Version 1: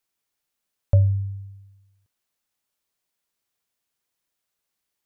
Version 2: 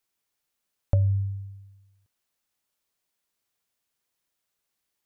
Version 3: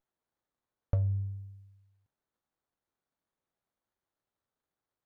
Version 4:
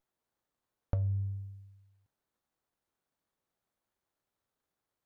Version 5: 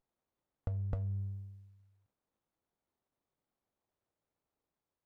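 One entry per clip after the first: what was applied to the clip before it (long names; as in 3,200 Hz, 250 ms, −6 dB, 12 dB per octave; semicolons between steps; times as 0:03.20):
downward compressor, threshold −18 dBFS, peak gain reduction 6 dB
windowed peak hold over 17 samples; level −6.5 dB
downward compressor 2 to 1, threshold −33 dBFS, peak gain reduction 6 dB; level +2 dB
backwards echo 260 ms −3 dB; windowed peak hold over 17 samples; level −2.5 dB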